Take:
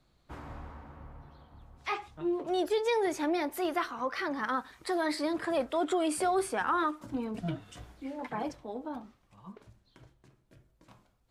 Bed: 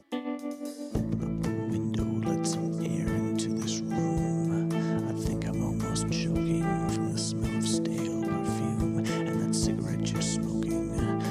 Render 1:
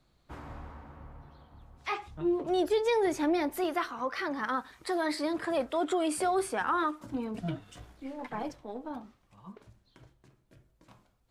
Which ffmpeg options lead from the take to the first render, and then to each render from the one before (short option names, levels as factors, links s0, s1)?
-filter_complex "[0:a]asettb=1/sr,asplit=3[s0][s1][s2];[s0]atrim=end=2.064[s3];[s1]atrim=start=2.06:end=3.64,asetpts=PTS-STARTPTS,afade=t=in:d=0.004:c=qsin,afade=t=out:st=1.576:d=0.004:c=qsin,lowshelf=f=220:g=9[s4];[s2]atrim=start=3.636[s5];[s3][s4]acrossfade=d=0.004:c1=hsin:c2=qsin[s6];[s6][s5]acrossfade=d=0.004:c1=qsin:c2=hsin,asettb=1/sr,asplit=3[s7][s8][s9];[s7]atrim=end=7.594[s10];[s8]atrim=start=7.59:end=8.91,asetpts=PTS-STARTPTS,afade=t=in:d=0.004:c=qsin,afade=t=out:st=1.316:d=0.004:c=qsin,aeval=exprs='if(lt(val(0),0),0.708*val(0),val(0))':c=same[s11];[s9]atrim=start=8.906[s12];[s10][s11]acrossfade=d=0.004:c1=hsin:c2=qsin[s13];[s13][s12]acrossfade=d=0.004:c1=qsin:c2=hsin"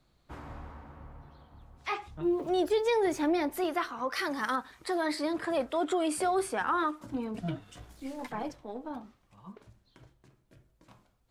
-filter_complex "[0:a]asettb=1/sr,asplit=3[s0][s1][s2];[s0]atrim=end=2.234[s3];[s1]atrim=start=2.23:end=3.32,asetpts=PTS-STARTPTS,afade=t=in:d=0.004:c=qsin,afade=t=out:st=1.086:d=0.004:c=qsin,aeval=exprs='val(0)*gte(abs(val(0)),0.002)':c=same[s4];[s2]atrim=start=3.316[s5];[s3][s4]acrossfade=d=0.004:c1=hsin:c2=qsin[s6];[s6][s5]acrossfade=d=0.004:c1=qsin:c2=hsin,asettb=1/sr,asplit=3[s7][s8][s9];[s7]atrim=end=4.124[s10];[s8]atrim=start=4.12:end=4.56,asetpts=PTS-STARTPTS,afade=t=in:d=0.004:c=qsin,afade=t=out:st=0.436:d=0.004:c=qsin,equalizer=f=11000:t=o:w=1.9:g=15[s11];[s9]atrim=start=4.556[s12];[s10][s11]acrossfade=d=0.004:c1=hsin:c2=qsin[s13];[s13][s12]acrossfade=d=0.004:c1=qsin:c2=hsin,asplit=3[s14][s15][s16];[s14]afade=t=out:st=7.89:d=0.02[s17];[s15]bass=f=250:g=3,treble=f=4000:g=13,afade=t=in:st=7.89:d=0.02,afade=t=out:st=8.31:d=0.02[s18];[s16]afade=t=in:st=8.31:d=0.02[s19];[s17][s18][s19]amix=inputs=3:normalize=0"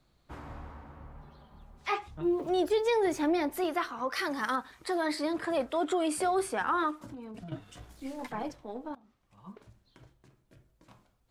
-filter_complex "[0:a]asettb=1/sr,asplit=3[s0][s1][s2];[s0]atrim=end=1.164[s3];[s1]atrim=start=1.16:end=1.99,asetpts=PTS-STARTPTS,afade=t=in:d=0.004:c=qsin,afade=t=out:st=0.826:d=0.004:c=qsin,aecho=1:1:5:0.65,atrim=end_sample=36603[s4];[s2]atrim=start=1.986[s5];[s3][s4]acrossfade=d=0.004:c1=hsin:c2=qsin[s6];[s6][s5]acrossfade=d=0.004:c1=qsin:c2=hsin,asettb=1/sr,asplit=3[s7][s8][s9];[s7]atrim=end=7.094[s10];[s8]atrim=start=7.09:end=7.52,asetpts=PTS-STARTPTS,afade=t=in:d=0.004:c=qsin,afade=t=out:st=0.426:d=0.004:c=qsin,acompressor=threshold=0.01:ratio=12:attack=3.2:release=140:knee=1:detection=peak[s11];[s9]atrim=start=7.516[s12];[s10][s11]acrossfade=d=0.004:c1=hsin:c2=qsin[s13];[s13][s12]acrossfade=d=0.004:c1=qsin:c2=hsin,asplit=2[s14][s15];[s14]atrim=end=8.95,asetpts=PTS-STARTPTS,afade=t=out:st=8.946:d=0.004:c=hsin:silence=0.0749894[s16];[s15]atrim=start=8.95,asetpts=PTS-STARTPTS,afade=t=in:d=0.54:silence=0.0749894[s17];[s16][s17]concat=n=2:v=0:a=1"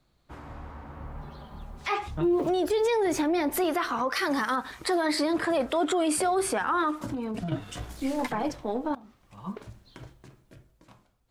-af "dynaudnorm=f=180:g=11:m=3.76,alimiter=limit=0.119:level=0:latency=1:release=96"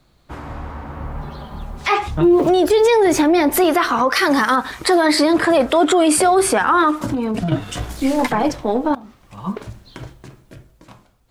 -af "volume=3.76"